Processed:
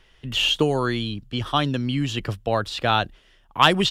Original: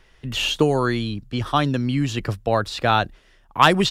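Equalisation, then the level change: peaking EQ 3.1 kHz +7 dB 0.4 oct; -2.5 dB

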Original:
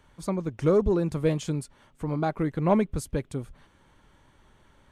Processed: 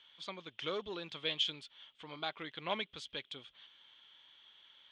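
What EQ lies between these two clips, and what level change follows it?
band-pass filter 3.3 kHz, Q 7.7; distance through air 110 m; +17.5 dB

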